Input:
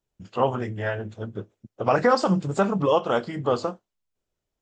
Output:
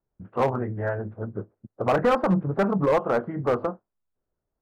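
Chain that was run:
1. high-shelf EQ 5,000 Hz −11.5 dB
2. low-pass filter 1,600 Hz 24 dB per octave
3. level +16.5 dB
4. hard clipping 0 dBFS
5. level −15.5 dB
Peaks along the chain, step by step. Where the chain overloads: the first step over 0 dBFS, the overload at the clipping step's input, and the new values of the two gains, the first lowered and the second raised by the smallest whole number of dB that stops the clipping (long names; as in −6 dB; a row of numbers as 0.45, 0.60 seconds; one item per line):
−8.5, −8.5, +8.0, 0.0, −15.5 dBFS
step 3, 8.0 dB
step 3 +8.5 dB, step 5 −7.5 dB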